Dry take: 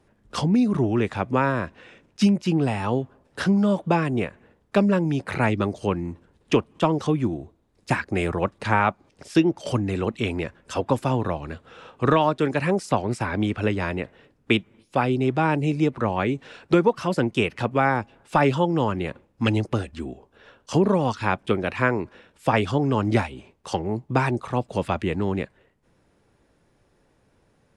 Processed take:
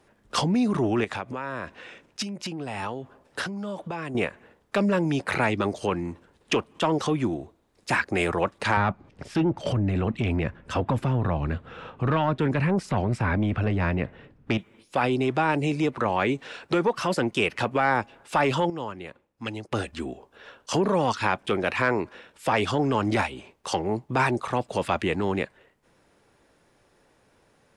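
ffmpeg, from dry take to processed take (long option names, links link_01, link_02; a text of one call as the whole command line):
ffmpeg -i in.wav -filter_complex "[0:a]asettb=1/sr,asplit=3[link_01][link_02][link_03];[link_01]atrim=end=1.044[link_04];[link_02]atrim=start=1.04:end=4.15,asetpts=PTS-STARTPTS,afade=type=in:duration=0.004:curve=qsin,afade=type=out:start_time=3.106:duration=0.004:curve=qsin,acompressor=threshold=-29dB:ratio=12:attack=3.2:release=140:knee=1:detection=peak[link_05];[link_03]atrim=start=4.146[link_06];[link_04][link_05]acrossfade=duration=0.004:curve1=hsin:curve2=qsin[link_07];[link_07][link_06]acrossfade=duration=0.004:curve1=qsin:curve2=hsin,asettb=1/sr,asplit=3[link_08][link_09][link_10];[link_08]atrim=end=8.774[link_11];[link_09]atrim=start=8.77:end=14.58,asetpts=PTS-STARTPTS,afade=type=in:duration=0.004:curve=qsin,afade=type=out:start_time=5.806:duration=0.004:curve=qsin,bass=frequency=250:gain=14,treble=frequency=4000:gain=-12[link_12];[link_10]atrim=start=14.576[link_13];[link_11][link_12]acrossfade=duration=0.004:curve1=hsin:curve2=qsin[link_14];[link_14][link_13]acrossfade=duration=0.004:curve1=qsin:curve2=hsin,asplit=3[link_15][link_16][link_17];[link_15]atrim=end=18.702[link_18];[link_16]atrim=start=18.698:end=19.722,asetpts=PTS-STARTPTS,volume=-12dB[link_19];[link_17]atrim=start=19.718[link_20];[link_18][link_19]acrossfade=duration=0.004:curve1=hsin:curve2=hsin[link_21];[link_21][link_20]acrossfade=duration=0.004:curve1=hsin:curve2=hsin,acontrast=73,alimiter=limit=-9.5dB:level=0:latency=1:release=17,lowshelf=frequency=300:gain=-9.5,volume=-2dB" out.wav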